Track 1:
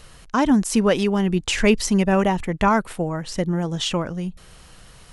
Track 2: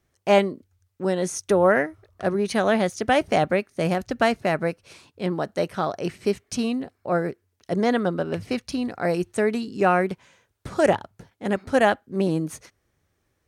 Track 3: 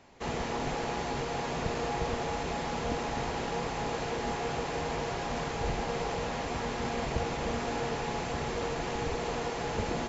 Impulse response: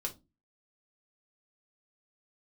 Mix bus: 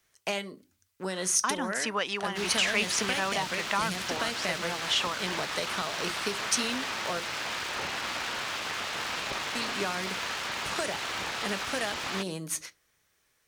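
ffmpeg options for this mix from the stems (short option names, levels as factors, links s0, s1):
-filter_complex "[0:a]bandpass=f=1100:t=q:w=1.1:csg=0,adelay=1100,volume=1.33[s0];[1:a]acompressor=threshold=0.0708:ratio=6,volume=0.631,asplit=3[s1][s2][s3];[s1]atrim=end=7.2,asetpts=PTS-STARTPTS,afade=t=out:st=7.196:d=0.004:c=hsin[s4];[s2]atrim=start=7.2:end=9.55,asetpts=PTS-STARTPTS,volume=0[s5];[s3]atrim=start=9.55,asetpts=PTS-STARTPTS,afade=t=in:d=0.004:c=hsin[s6];[s4][s5][s6]concat=n=3:v=0:a=1,asplit=2[s7][s8];[s8]volume=0.473[s9];[2:a]lowpass=4600,aeval=exprs='abs(val(0))':c=same,highpass=55,adelay=2150,volume=1.26[s10];[3:a]atrim=start_sample=2205[s11];[s9][s11]afir=irnorm=-1:irlink=0[s12];[s0][s7][s10][s12]amix=inputs=4:normalize=0,tiltshelf=f=820:g=-9,acrossover=split=320|3000[s13][s14][s15];[s14]acompressor=threshold=0.0282:ratio=4[s16];[s13][s16][s15]amix=inputs=3:normalize=0"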